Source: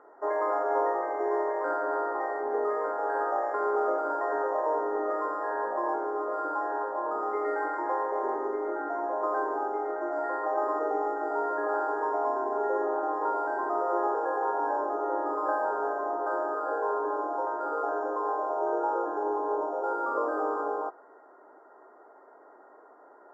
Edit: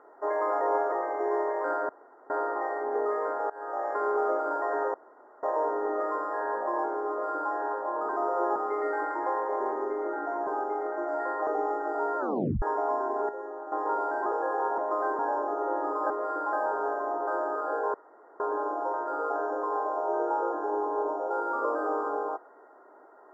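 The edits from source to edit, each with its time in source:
0:00.61–0:00.92: reverse
0:01.89: splice in room tone 0.41 s
0:03.09–0:03.52: fade in, from −23 dB
0:04.53: splice in room tone 0.49 s
0:06.19–0:06.62: duplicate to 0:15.52
0:09.10–0:09.51: move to 0:14.61
0:10.51–0:10.83: remove
0:11.55: tape stop 0.43 s
0:12.65–0:13.08: clip gain −10 dB
0:13.62–0:14.09: move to 0:07.19
0:16.93: splice in room tone 0.46 s

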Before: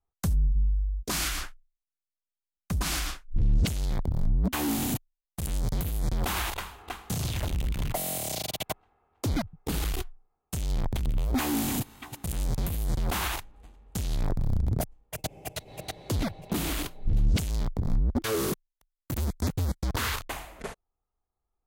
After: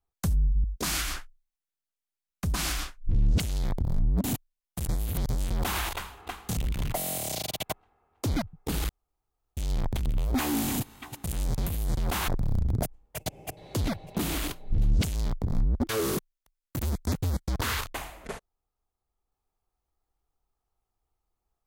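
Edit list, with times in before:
0:00.64–0:00.91: remove
0:04.51–0:04.85: remove
0:05.48–0:06.11: reverse
0:07.18–0:07.57: remove
0:09.89–0:10.57: fill with room tone
0:13.28–0:14.26: remove
0:15.55–0:15.92: remove

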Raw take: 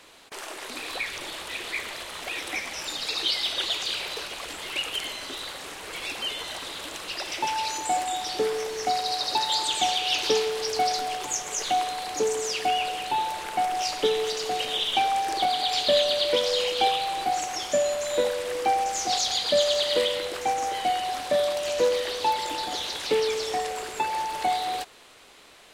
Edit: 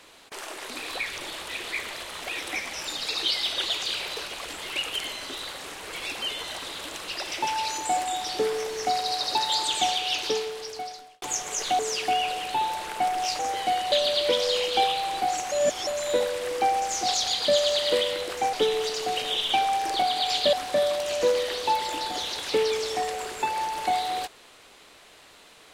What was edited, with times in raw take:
0:09.83–0:11.22: fade out
0:11.79–0:12.36: remove
0:13.96–0:15.96: swap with 0:20.57–0:21.10
0:17.56–0:17.91: reverse

